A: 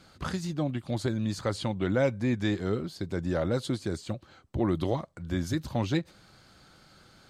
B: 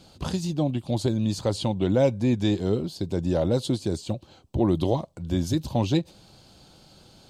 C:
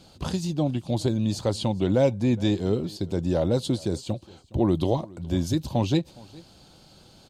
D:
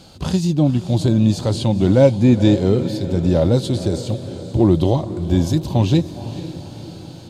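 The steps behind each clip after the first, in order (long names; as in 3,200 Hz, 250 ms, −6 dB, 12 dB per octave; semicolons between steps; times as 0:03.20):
flat-topped bell 1,600 Hz −11 dB 1.1 octaves; level +5 dB
single-tap delay 415 ms −23 dB
harmonic and percussive parts rebalanced harmonic +8 dB; feedback delay with all-pass diffusion 488 ms, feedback 57%, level −13 dB; level +2.5 dB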